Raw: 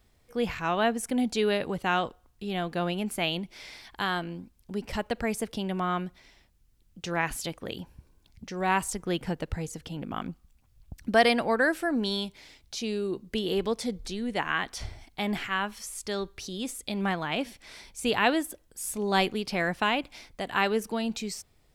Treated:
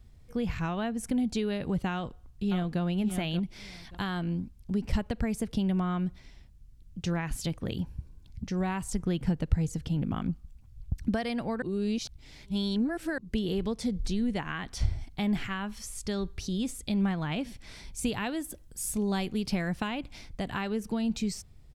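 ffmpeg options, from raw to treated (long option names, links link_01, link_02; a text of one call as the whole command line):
ffmpeg -i in.wav -filter_complex "[0:a]asplit=2[link_01][link_02];[link_02]afade=type=in:start_time=1.93:duration=0.01,afade=type=out:start_time=2.81:duration=0.01,aecho=0:1:580|1160:0.334965|0.0502448[link_03];[link_01][link_03]amix=inputs=2:normalize=0,asettb=1/sr,asplit=3[link_04][link_05][link_06];[link_04]atrim=end=17.934[link_07];[link_05]atrim=start=17.93:end=19.88,asetpts=PTS-STARTPTS,afade=type=in:duration=0.004:curve=qsin,afade=type=out:start_time=1.946:duration=0.004:curve=qsin,highshelf=frequency=6400:gain=6[link_08];[link_06]atrim=start=19.876[link_09];[link_07][link_08]acrossfade=duration=0.004:curve1=hsin:curve2=qsin[link_10];[link_10][link_09]acrossfade=duration=0.004:curve1=qsin:curve2=hsin,asplit=3[link_11][link_12][link_13];[link_11]atrim=end=11.622[link_14];[link_12]atrim=start=11.618:end=13.182,asetpts=PTS-STARTPTS,areverse[link_15];[link_13]atrim=start=13.178[link_16];[link_14][link_15]acrossfade=duration=0.004:curve1=hsin:curve2=hsin[link_17];[link_17][link_16]acrossfade=duration=0.004:curve1=hsin:curve2=hsin,highshelf=frequency=11000:gain=-8,acompressor=threshold=-30dB:ratio=4,bass=frequency=250:gain=15,treble=frequency=4000:gain=3,volume=-2.5dB" out.wav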